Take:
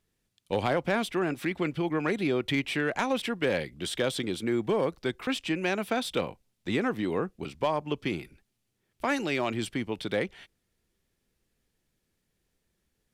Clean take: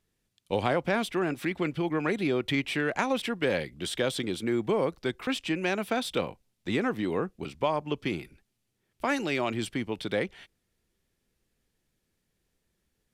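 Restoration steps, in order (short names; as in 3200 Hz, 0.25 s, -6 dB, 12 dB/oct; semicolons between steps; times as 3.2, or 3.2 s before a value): clip repair -17.5 dBFS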